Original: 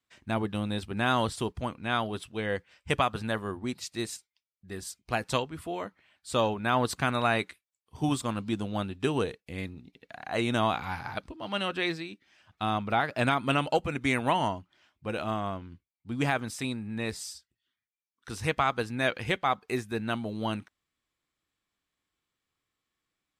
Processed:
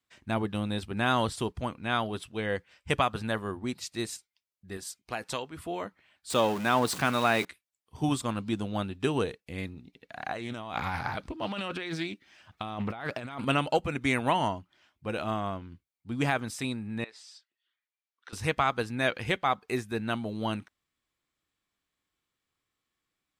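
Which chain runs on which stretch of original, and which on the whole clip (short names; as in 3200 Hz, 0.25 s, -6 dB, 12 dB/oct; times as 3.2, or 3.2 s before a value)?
4.77–5.57 low shelf 160 Hz -12 dB + compressor 2:1, threshold -31 dBFS
6.3–7.45 zero-crossing step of -33.5 dBFS + HPF 140 Hz
10.16–13.45 negative-ratio compressor -35 dBFS + Doppler distortion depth 0.24 ms
17.04–18.33 compressor 16:1, threshold -40 dBFS + BPF 430–3300 Hz + tilt +2 dB/oct
whole clip: dry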